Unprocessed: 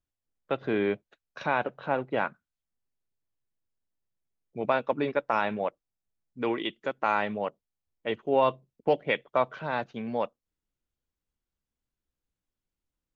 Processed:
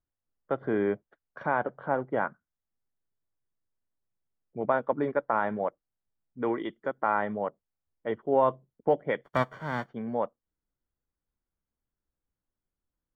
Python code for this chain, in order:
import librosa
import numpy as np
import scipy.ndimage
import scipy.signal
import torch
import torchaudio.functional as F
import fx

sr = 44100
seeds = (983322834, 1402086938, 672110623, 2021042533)

y = fx.envelope_flatten(x, sr, power=0.3, at=(9.23, 9.88), fade=0.02)
y = scipy.signal.savgol_filter(y, 41, 4, mode='constant')